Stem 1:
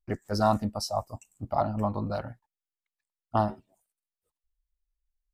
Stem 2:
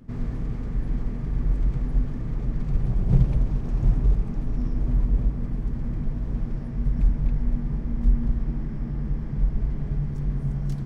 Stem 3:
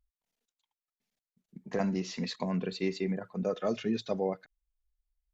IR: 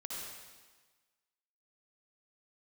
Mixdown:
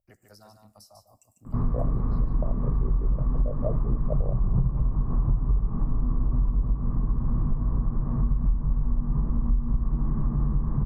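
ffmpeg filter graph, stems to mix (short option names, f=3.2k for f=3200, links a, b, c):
-filter_complex "[0:a]aemphasis=mode=production:type=75fm,acrossover=split=150|520[a][b][c];[a]acompressor=threshold=-42dB:ratio=4[d];[b]acompressor=threshold=-44dB:ratio=4[e];[c]acompressor=threshold=-35dB:ratio=4[f];[d][e][f]amix=inputs=3:normalize=0,alimiter=level_in=1dB:limit=-24dB:level=0:latency=1:release=443,volume=-1dB,volume=-16.5dB,asplit=3[g][h][i];[h]volume=-16.5dB[j];[i]volume=-5.5dB[k];[1:a]lowpass=f=1.1k:t=q:w=7.6,lowshelf=f=300:g=9.5,adelay=1450,volume=0dB[l];[2:a]tremolo=f=59:d=0.889,lowpass=f=610:t=q:w=4.9,volume=-1dB[m];[3:a]atrim=start_sample=2205[n];[j][n]afir=irnorm=-1:irlink=0[o];[k]aecho=0:1:147:1[p];[g][l][m][o][p]amix=inputs=5:normalize=0,acompressor=threshold=-20dB:ratio=6"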